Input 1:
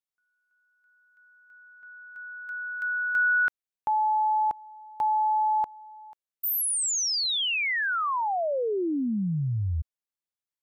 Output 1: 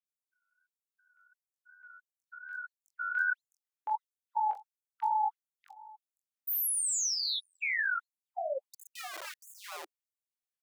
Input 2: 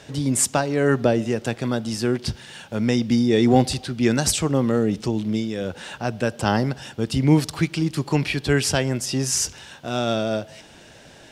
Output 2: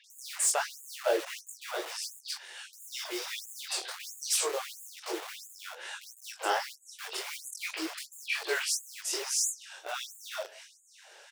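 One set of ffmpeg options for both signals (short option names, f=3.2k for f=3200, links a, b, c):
-filter_complex "[0:a]acrossover=split=3700[a][b];[b]adelay=40[c];[a][c]amix=inputs=2:normalize=0,flanger=delay=17:depth=8:speed=2.7,asplit=2[d][e];[e]adelay=22,volume=-6dB[f];[d][f]amix=inputs=2:normalize=0,acrossover=split=310|1400|2100[g][h][i][j];[g]acrusher=bits=5:mix=0:aa=0.000001[k];[h]flanger=delay=5.9:depth=8.3:regen=-61:speed=0.77:shape=sinusoidal[l];[j]asoftclip=type=tanh:threshold=-19dB[m];[k][l][i][m]amix=inputs=4:normalize=0,afftfilt=real='re*gte(b*sr/1024,310*pow(6700/310,0.5+0.5*sin(2*PI*1.5*pts/sr)))':imag='im*gte(b*sr/1024,310*pow(6700/310,0.5+0.5*sin(2*PI*1.5*pts/sr)))':win_size=1024:overlap=0.75,volume=-1dB"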